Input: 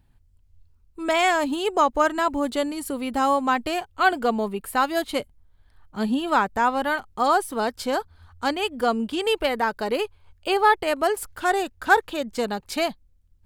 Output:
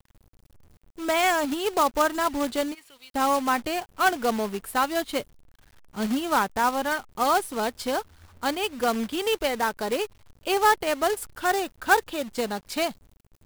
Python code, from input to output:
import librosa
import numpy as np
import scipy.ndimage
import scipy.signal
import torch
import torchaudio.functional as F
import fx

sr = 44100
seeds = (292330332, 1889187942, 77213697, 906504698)

y = fx.bandpass_q(x, sr, hz=fx.line((2.73, 1800.0), (3.14, 5200.0)), q=2.8, at=(2.73, 3.14), fade=0.02)
y = fx.quant_companded(y, sr, bits=4)
y = y * librosa.db_to_amplitude(-2.5)